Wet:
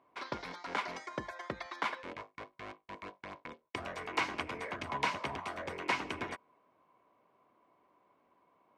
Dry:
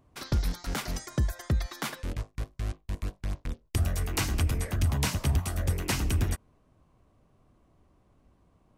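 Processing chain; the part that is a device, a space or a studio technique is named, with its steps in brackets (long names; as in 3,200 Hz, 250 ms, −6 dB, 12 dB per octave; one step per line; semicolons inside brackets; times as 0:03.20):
tin-can telephone (band-pass filter 420–2,800 Hz; hollow resonant body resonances 1,000/2,200 Hz, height 11 dB, ringing for 45 ms)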